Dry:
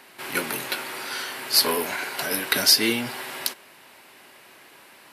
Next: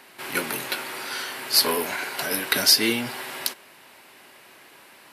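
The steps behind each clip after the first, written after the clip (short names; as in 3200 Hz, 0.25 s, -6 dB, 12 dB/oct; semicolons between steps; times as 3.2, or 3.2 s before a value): nothing audible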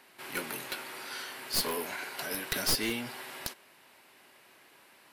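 one-sided fold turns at -17.5 dBFS; gain -9 dB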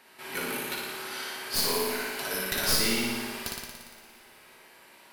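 flutter echo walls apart 9.9 m, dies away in 1.3 s; two-slope reverb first 0.27 s, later 2.7 s, from -18 dB, DRR 4 dB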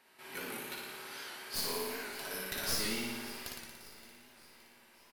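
feedback echo 0.57 s, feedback 51%, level -17 dB; record warp 78 rpm, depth 100 cents; gain -9 dB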